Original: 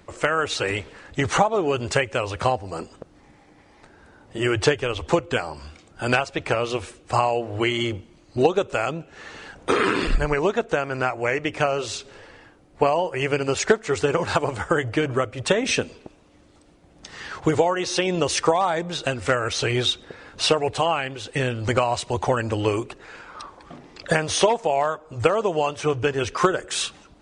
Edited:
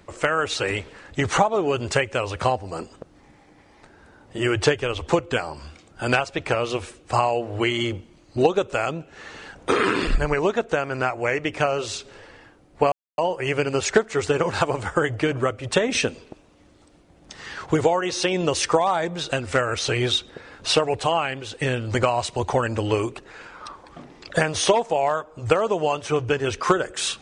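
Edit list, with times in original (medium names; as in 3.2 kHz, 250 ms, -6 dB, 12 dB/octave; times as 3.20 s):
12.92 s: insert silence 0.26 s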